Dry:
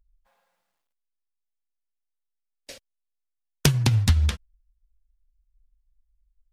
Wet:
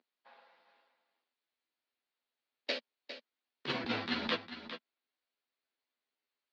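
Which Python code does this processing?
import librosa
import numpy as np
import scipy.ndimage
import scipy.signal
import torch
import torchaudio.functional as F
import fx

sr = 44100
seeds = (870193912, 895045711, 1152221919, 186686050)

y = fx.tracing_dist(x, sr, depth_ms=0.21)
y = scipy.signal.sosfilt(scipy.signal.cheby1(4, 1.0, [230.0, 4400.0], 'bandpass', fs=sr, output='sos'), y)
y = fx.over_compress(y, sr, threshold_db=-38.0, ratio=-1.0)
y = fx.doubler(y, sr, ms=12.0, db=-5)
y = y + 10.0 ** (-11.0 / 20.0) * np.pad(y, (int(405 * sr / 1000.0), 0))[:len(y)]
y = F.gain(torch.from_numpy(y), 2.5).numpy()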